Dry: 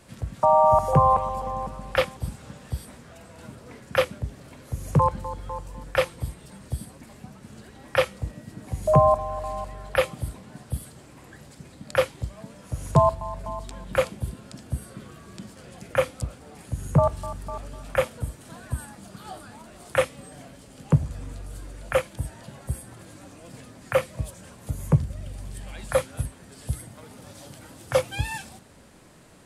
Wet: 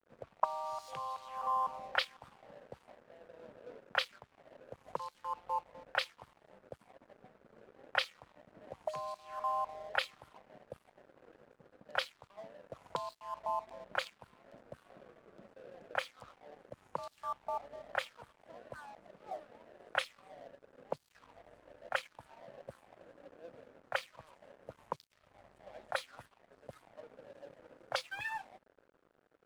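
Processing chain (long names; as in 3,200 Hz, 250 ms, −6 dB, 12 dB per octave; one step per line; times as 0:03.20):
pitch vibrato 0.42 Hz 5.8 cents
envelope filter 440–4,300 Hz, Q 3.6, up, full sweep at −17.5 dBFS
dead-zone distortion −59.5 dBFS
level +3 dB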